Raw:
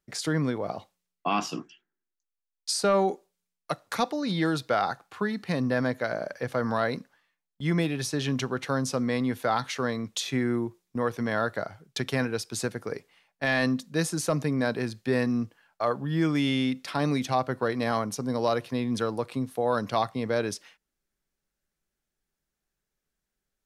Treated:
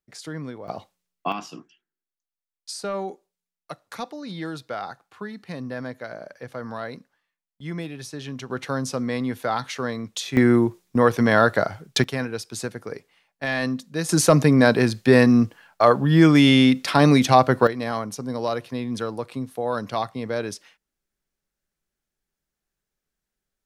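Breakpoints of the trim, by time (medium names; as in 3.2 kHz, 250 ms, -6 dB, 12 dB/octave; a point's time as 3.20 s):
-7 dB
from 0.68 s +2 dB
from 1.32 s -6 dB
from 8.50 s +1 dB
from 10.37 s +10.5 dB
from 12.04 s 0 dB
from 14.09 s +11 dB
from 17.67 s 0 dB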